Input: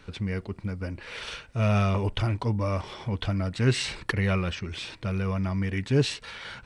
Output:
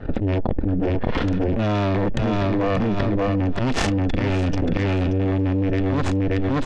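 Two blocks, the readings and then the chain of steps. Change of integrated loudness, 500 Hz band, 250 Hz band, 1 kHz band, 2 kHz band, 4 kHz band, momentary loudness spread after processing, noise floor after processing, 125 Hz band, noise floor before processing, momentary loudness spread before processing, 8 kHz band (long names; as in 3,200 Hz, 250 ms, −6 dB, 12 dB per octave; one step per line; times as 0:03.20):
+6.5 dB, +8.0 dB, +9.5 dB, +7.5 dB, +3.0 dB, −0.5 dB, 2 LU, −22 dBFS, +4.5 dB, −51 dBFS, 11 LU, +0.5 dB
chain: adaptive Wiener filter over 41 samples
harmonic generator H 3 −10 dB, 4 −13 dB, 8 −14 dB, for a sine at −10.5 dBFS
volume swells 144 ms
pitch vibrato 5.7 Hz 9.7 cents
hollow resonant body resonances 1,800/3,400 Hz, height 7 dB
soft clipping −22.5 dBFS, distortion −14 dB
harmonic and percussive parts rebalanced harmonic +8 dB
high-frequency loss of the air 120 metres
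on a send: repeating echo 581 ms, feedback 17%, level −6 dB
on the sum: envelope flattener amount 100%
level −2 dB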